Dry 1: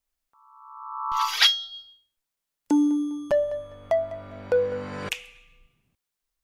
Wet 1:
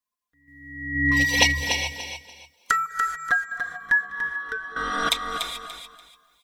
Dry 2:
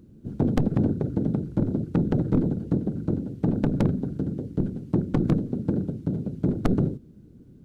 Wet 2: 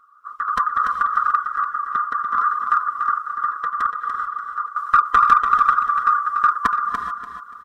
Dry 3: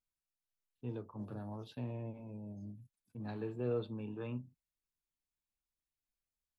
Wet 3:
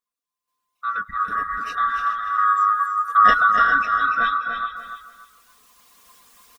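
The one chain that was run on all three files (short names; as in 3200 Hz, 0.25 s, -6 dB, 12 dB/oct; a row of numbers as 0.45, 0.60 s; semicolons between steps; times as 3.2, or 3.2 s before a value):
band-swap scrambler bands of 1000 Hz; recorder AGC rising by 7 dB/s; random-step tremolo 2.1 Hz, depth 75%; non-linear reverb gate 0.46 s rising, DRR 7 dB; in parallel at -8 dB: one-sided clip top -18 dBFS; on the sum: reverb removal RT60 0.59 s; comb 4.2 ms, depth 67%; on a send: feedback echo 0.29 s, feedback 26%, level -7 dB; on the sum: normalise peaks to -2 dBFS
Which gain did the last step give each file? +1.0, +3.5, +10.0 dB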